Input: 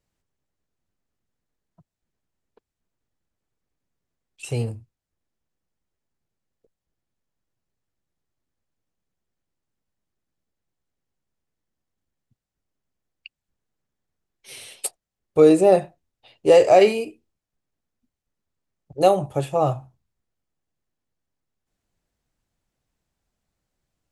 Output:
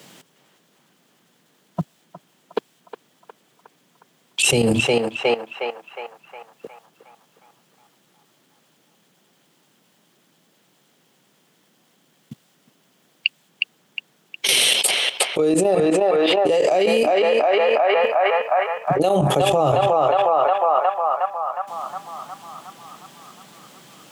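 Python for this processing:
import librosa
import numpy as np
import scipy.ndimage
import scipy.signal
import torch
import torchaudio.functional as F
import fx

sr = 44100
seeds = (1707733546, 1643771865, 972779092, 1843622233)

p1 = scipy.signal.sosfilt(scipy.signal.butter(6, 150.0, 'highpass', fs=sr, output='sos'), x)
p2 = fx.peak_eq(p1, sr, hz=3200.0, db=7.0, octaves=0.4)
p3 = fx.level_steps(p2, sr, step_db=14)
p4 = p3 + fx.echo_banded(p3, sr, ms=361, feedback_pct=66, hz=1200.0, wet_db=-9.5, dry=0)
p5 = fx.env_flatten(p4, sr, amount_pct=100)
y = p5 * librosa.db_to_amplitude(-3.5)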